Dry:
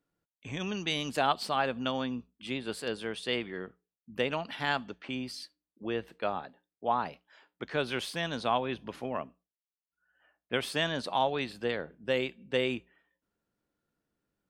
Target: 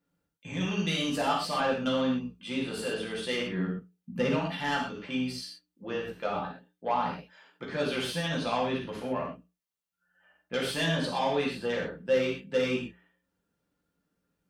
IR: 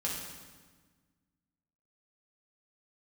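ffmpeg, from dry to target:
-filter_complex "[0:a]asettb=1/sr,asplit=3[s0][s1][s2];[s0]atrim=end=3.524[s3];[s1]atrim=start=3.52:end=4.36,asetpts=PTS-STARTPTS,afade=t=in:d=0.004:c=qsin,afade=t=out:st=0.836:d=0.004:c=qsin,equalizer=f=180:t=o:w=1.4:g=9.5[s4];[s2]atrim=start=4.356[s5];[s3][s4]acrossfade=d=0.004:c1=hsin:c2=qsin[s6];[s6][s5]acrossfade=d=0.004:c1=qsin:c2=hsin,asoftclip=type=tanh:threshold=0.075[s7];[1:a]atrim=start_sample=2205,atrim=end_sample=6174[s8];[s7][s8]afir=irnorm=-1:irlink=0"

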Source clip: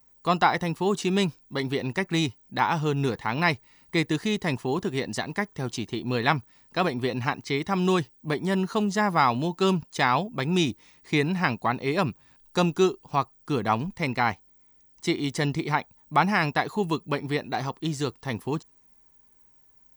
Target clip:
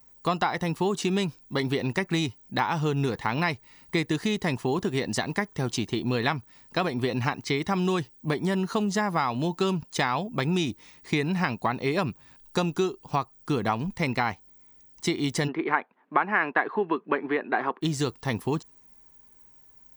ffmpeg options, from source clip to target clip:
-filter_complex "[0:a]acompressor=threshold=0.0501:ratio=6,asplit=3[s0][s1][s2];[s0]afade=t=out:st=15.47:d=0.02[s3];[s1]highpass=f=240:w=0.5412,highpass=f=240:w=1.3066,equalizer=f=390:t=q:w=4:g=4,equalizer=f=1100:t=q:w=4:g=4,equalizer=f=1600:t=q:w=4:g=8,lowpass=f=2600:w=0.5412,lowpass=f=2600:w=1.3066,afade=t=in:st=15.47:d=0.02,afade=t=out:st=17.81:d=0.02[s4];[s2]afade=t=in:st=17.81:d=0.02[s5];[s3][s4][s5]amix=inputs=3:normalize=0,volume=1.58"

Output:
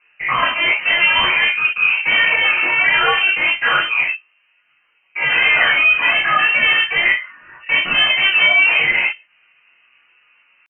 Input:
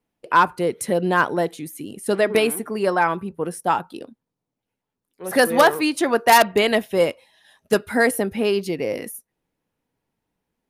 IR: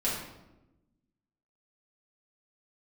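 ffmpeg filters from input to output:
-filter_complex "[0:a]asplit=2[s0][s1];[s1]alimiter=limit=0.251:level=0:latency=1:release=226,volume=1.19[s2];[s0][s2]amix=inputs=2:normalize=0,asetrate=88200,aresample=44100,atempo=0.5,asplit=2[s3][s4];[s4]highpass=f=720:p=1,volume=14.1,asoftclip=type=tanh:threshold=0.944[s5];[s3][s5]amix=inputs=2:normalize=0,lowpass=f=1200:p=1,volume=0.501,aresample=8000,asoftclip=type=tanh:threshold=0.106,aresample=44100[s6];[1:a]atrim=start_sample=2205,atrim=end_sample=3087,asetrate=37926,aresample=44100[s7];[s6][s7]afir=irnorm=-1:irlink=0,lowpass=f=2600:t=q:w=0.5098,lowpass=f=2600:t=q:w=0.6013,lowpass=f=2600:t=q:w=0.9,lowpass=f=2600:t=q:w=2.563,afreqshift=-3100,volume=0.841"

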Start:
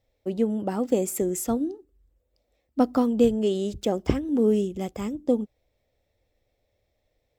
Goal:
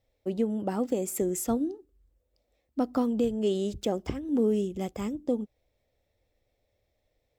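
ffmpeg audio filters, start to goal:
-af "alimiter=limit=0.178:level=0:latency=1:release=259,volume=0.794"

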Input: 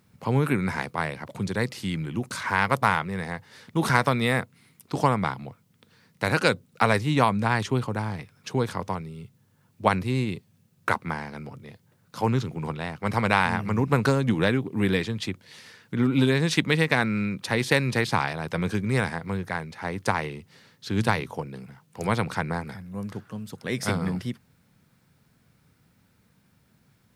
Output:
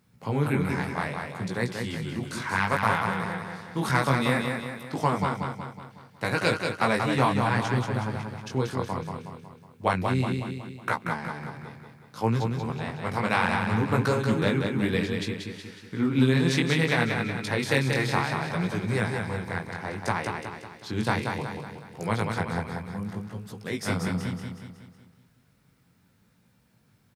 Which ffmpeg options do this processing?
-af "flanger=delay=16.5:depth=6.8:speed=0.64,aecho=1:1:184|368|552|736|920|1104:0.562|0.281|0.141|0.0703|0.0351|0.0176"

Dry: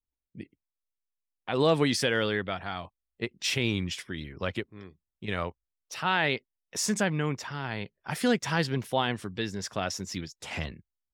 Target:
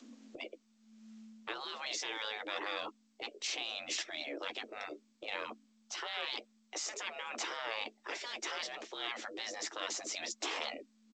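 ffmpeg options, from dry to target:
-filter_complex "[0:a]areverse,acompressor=threshold=0.00891:ratio=12,areverse,afreqshift=220,acompressor=mode=upward:threshold=0.00141:ratio=2.5,asplit=2[s0][s1];[s1]adelay=12,volume=0.251[s2];[s0][s2]amix=inputs=2:normalize=0,afftfilt=real='re*lt(hypot(re,im),0.0126)':imag='im*lt(hypot(re,im),0.0126)':win_size=1024:overlap=0.75,lowshelf=f=350:g=9,volume=4.22" -ar 16000 -c:a g722

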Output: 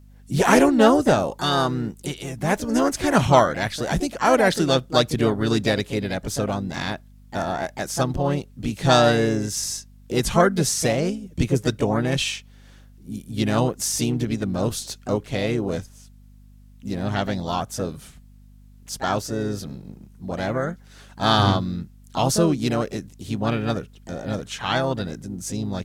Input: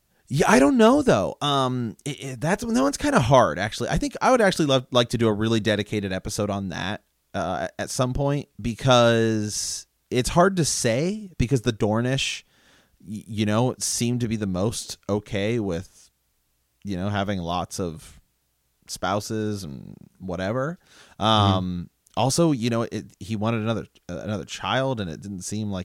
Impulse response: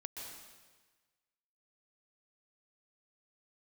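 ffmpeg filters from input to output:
-filter_complex "[0:a]asplit=2[s0][s1];[s1]asetrate=55563,aresample=44100,atempo=0.793701,volume=0.447[s2];[s0][s2]amix=inputs=2:normalize=0,aeval=exprs='val(0)+0.00447*(sin(2*PI*50*n/s)+sin(2*PI*2*50*n/s)/2+sin(2*PI*3*50*n/s)/3+sin(2*PI*4*50*n/s)/4+sin(2*PI*5*50*n/s)/5)':c=same"

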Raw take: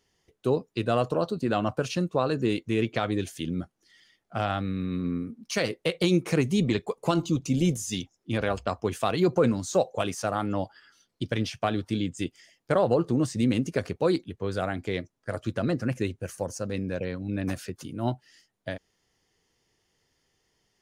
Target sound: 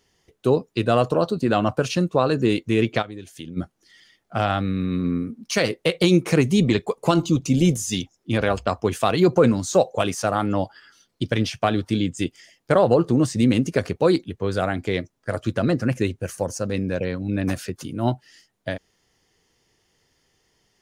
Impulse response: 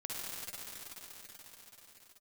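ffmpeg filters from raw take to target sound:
-filter_complex "[0:a]asplit=3[s0][s1][s2];[s0]afade=t=out:st=3.01:d=0.02[s3];[s1]acompressor=threshold=0.01:ratio=5,afade=t=in:st=3.01:d=0.02,afade=t=out:st=3.56:d=0.02[s4];[s2]afade=t=in:st=3.56:d=0.02[s5];[s3][s4][s5]amix=inputs=3:normalize=0,volume=2"

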